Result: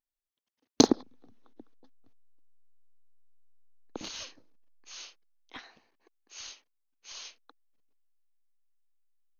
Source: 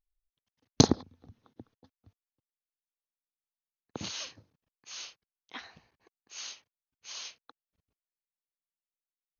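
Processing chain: resonant low shelf 190 Hz -11.5 dB, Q 1.5; in parallel at -6.5 dB: backlash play -25 dBFS; on the sum: gain -2.5 dB

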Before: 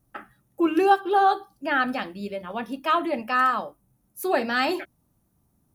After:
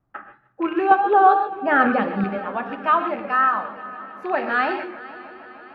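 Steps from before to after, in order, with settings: rattling part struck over -33 dBFS, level -25 dBFS; bell 1400 Hz +13 dB 2.4 oct; in parallel at +2.5 dB: vocal rider within 4 dB 0.5 s; 0.91–2.24 on the sum: small resonant body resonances 210/470 Hz, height 14 dB, ringing for 30 ms; on a send: multi-head echo 0.153 s, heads first and third, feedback 74%, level -19.5 dB; on the sum: non-linear reverb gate 0.16 s rising, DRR 7.5 dB; vibrato 3 Hz 40 cents; tape spacing loss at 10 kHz 30 dB; gain -11.5 dB

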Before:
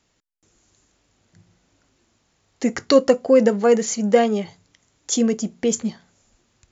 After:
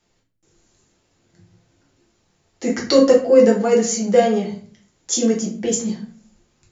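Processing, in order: dynamic EQ 6400 Hz, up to +4 dB, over -38 dBFS, Q 0.98; shoebox room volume 41 m³, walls mixed, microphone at 0.9 m; gain -4.5 dB

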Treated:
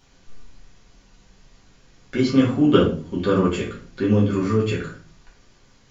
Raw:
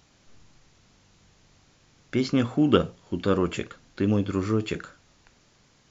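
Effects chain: shoebox room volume 30 m³, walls mixed, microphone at 1 m; gain -2.5 dB

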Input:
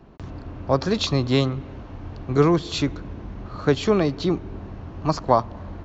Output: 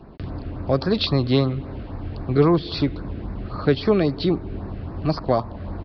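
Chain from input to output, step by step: downsampling 11025 Hz; in parallel at -2 dB: compressor, threshold -30 dBFS, peak gain reduction 17.5 dB; on the sum: LFO notch sine 3.7 Hz 880–3200 Hz

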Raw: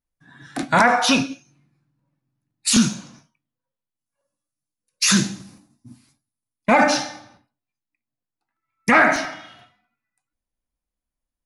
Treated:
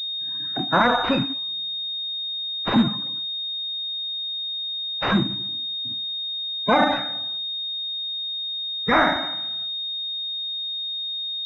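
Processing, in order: bin magnitudes rounded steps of 30 dB; 0.83–1.31 modulation noise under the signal 14 dB; pulse-width modulation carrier 3700 Hz; gain -1 dB

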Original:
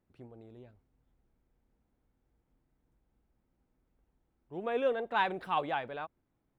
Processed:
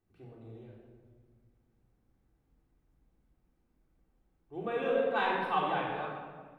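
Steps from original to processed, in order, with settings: shoebox room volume 1800 m³, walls mixed, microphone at 3.6 m; gain -5 dB

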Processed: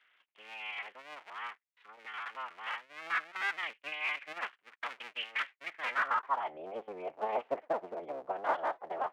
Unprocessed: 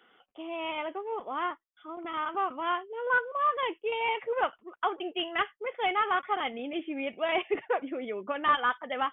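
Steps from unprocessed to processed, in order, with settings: cycle switcher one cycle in 3, inverted; band-pass sweep 2200 Hz -> 690 Hz, 5.63–6.66

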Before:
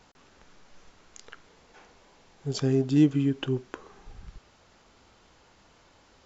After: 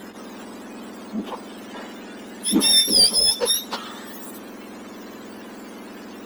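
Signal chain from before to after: spectrum mirrored in octaves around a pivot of 1200 Hz; power-law curve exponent 0.7; gain +8.5 dB

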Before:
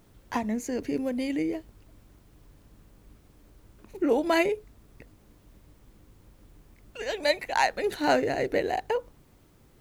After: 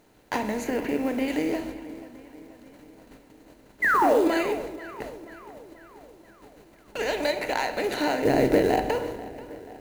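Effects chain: per-bin compression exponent 0.6; compressor 8:1, threshold -23 dBFS, peak gain reduction 8 dB; 8.25–8.85 low shelf 480 Hz +12 dB; gate -39 dBFS, range -18 dB; 0.64–1.28 band shelf 6100 Hz -9.5 dB; 3.82–4.28 painted sound fall 290–2100 Hz -21 dBFS; darkening echo 0.484 s, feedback 58%, low-pass 4100 Hz, level -17 dB; companded quantiser 6-bit; 4.13–4.53 notch 5600 Hz, Q 11; on a send at -8 dB: reverb RT60 1.1 s, pre-delay 7 ms

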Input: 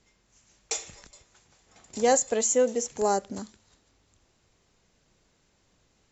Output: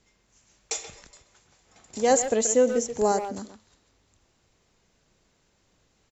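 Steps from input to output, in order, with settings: 2.1–3.12 low shelf 380 Hz +6.5 dB; speakerphone echo 0.13 s, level -8 dB

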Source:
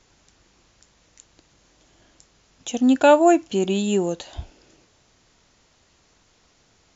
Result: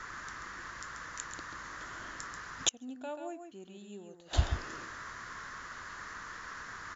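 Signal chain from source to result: echo 0.136 s -7 dB; band noise 1000–1900 Hz -52 dBFS; flipped gate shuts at -19 dBFS, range -34 dB; gain +6.5 dB

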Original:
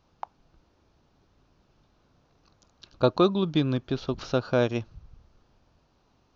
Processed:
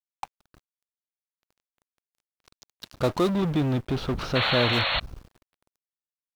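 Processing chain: in parallel at -11 dB: fuzz box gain 44 dB, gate -53 dBFS; 3.29–4.73 on the sum: tone controls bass +2 dB, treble -11 dB; bit-crush 9-bit; 4.35–5 painted sound noise 480–4400 Hz -20 dBFS; gain -5.5 dB

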